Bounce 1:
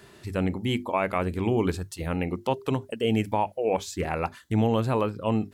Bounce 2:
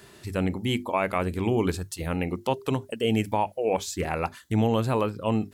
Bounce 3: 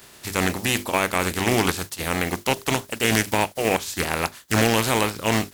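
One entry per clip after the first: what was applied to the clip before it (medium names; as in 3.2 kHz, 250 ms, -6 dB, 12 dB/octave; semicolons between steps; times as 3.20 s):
treble shelf 4.6 kHz +5.5 dB
spectral contrast reduction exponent 0.44; loudspeaker Doppler distortion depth 0.36 ms; trim +3.5 dB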